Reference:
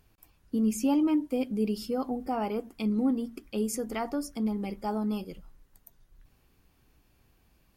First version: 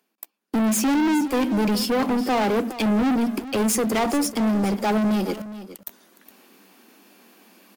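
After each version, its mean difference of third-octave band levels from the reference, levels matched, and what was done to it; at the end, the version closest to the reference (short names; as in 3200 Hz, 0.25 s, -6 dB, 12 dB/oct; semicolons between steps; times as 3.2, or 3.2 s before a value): 9.5 dB: steep high-pass 190 Hz 96 dB/oct; sample leveller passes 5; reverse; upward compressor, threshold -31 dBFS; reverse; echo 0.414 s -14.5 dB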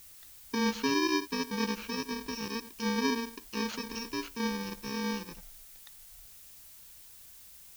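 13.5 dB: FFT order left unsorted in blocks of 64 samples; elliptic low-pass 6200 Hz; low shelf 380 Hz -4 dB; added noise blue -54 dBFS; gain +1.5 dB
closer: first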